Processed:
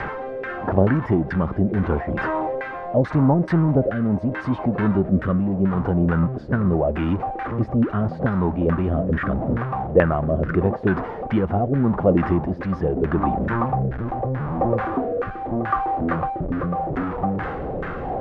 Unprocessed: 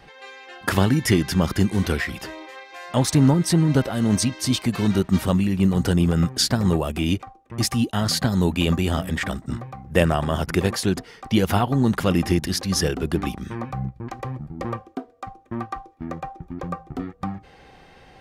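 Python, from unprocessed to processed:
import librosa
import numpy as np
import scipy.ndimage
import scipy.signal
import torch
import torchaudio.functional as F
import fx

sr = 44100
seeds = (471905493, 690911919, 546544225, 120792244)

p1 = x + 0.5 * 10.0 ** (-22.5 / 20.0) * np.sign(x)
p2 = fx.rotary(p1, sr, hz=0.8)
p3 = fx.rider(p2, sr, range_db=4, speed_s=0.5)
p4 = p2 + (p3 * librosa.db_to_amplitude(-1.0))
p5 = fx.filter_lfo_lowpass(p4, sr, shape='saw_down', hz=2.3, low_hz=490.0, high_hz=1700.0, q=3.0)
p6 = fx.dynamic_eq(p5, sr, hz=6400.0, q=0.7, threshold_db=-41.0, ratio=4.0, max_db=-5)
y = p6 * librosa.db_to_amplitude(-6.0)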